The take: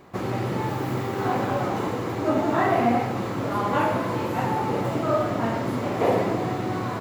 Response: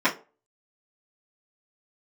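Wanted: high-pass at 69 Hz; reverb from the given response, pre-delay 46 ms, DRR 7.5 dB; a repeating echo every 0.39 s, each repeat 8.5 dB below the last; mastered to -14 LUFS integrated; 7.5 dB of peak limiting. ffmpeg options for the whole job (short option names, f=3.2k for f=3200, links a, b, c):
-filter_complex "[0:a]highpass=69,alimiter=limit=-17.5dB:level=0:latency=1,aecho=1:1:390|780|1170|1560:0.376|0.143|0.0543|0.0206,asplit=2[a][b];[1:a]atrim=start_sample=2205,adelay=46[c];[b][c]afir=irnorm=-1:irlink=0,volume=-24dB[d];[a][d]amix=inputs=2:normalize=0,volume=12dB"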